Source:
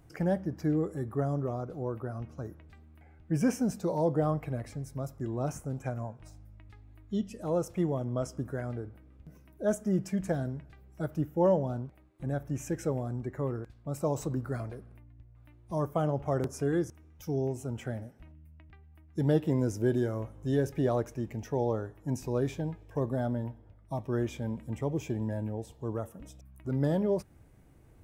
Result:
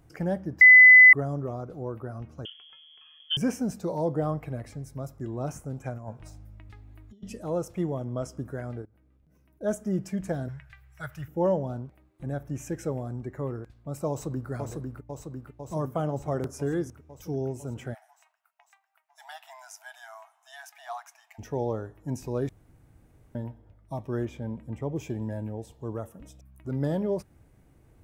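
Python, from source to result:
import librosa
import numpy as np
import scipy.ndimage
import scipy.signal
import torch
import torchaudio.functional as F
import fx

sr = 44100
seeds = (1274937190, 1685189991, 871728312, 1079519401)

y = fx.freq_invert(x, sr, carrier_hz=3300, at=(2.45, 3.37))
y = fx.over_compress(y, sr, threshold_db=-39.0, ratio=-0.5, at=(5.97, 7.39))
y = fx.level_steps(y, sr, step_db=21, at=(8.82, 9.63))
y = fx.curve_eq(y, sr, hz=(130.0, 250.0, 1800.0, 4500.0), db=(0, -24, 12, 4), at=(10.48, 11.28))
y = fx.echo_throw(y, sr, start_s=14.09, length_s=0.41, ms=500, feedback_pct=75, wet_db=-4.0)
y = fx.brickwall_highpass(y, sr, low_hz=640.0, at=(17.93, 21.38), fade=0.02)
y = fx.high_shelf(y, sr, hz=2900.0, db=-9.0, at=(24.25, 24.96))
y = fx.edit(y, sr, fx.bleep(start_s=0.61, length_s=0.52, hz=2010.0, db=-8.5),
    fx.room_tone_fill(start_s=22.49, length_s=0.86), tone=tone)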